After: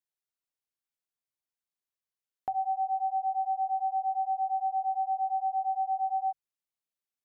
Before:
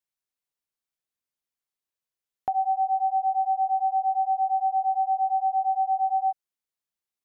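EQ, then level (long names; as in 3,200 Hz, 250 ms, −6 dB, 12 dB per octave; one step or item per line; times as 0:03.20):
mains-hum notches 50/100/150 Hz
−5.5 dB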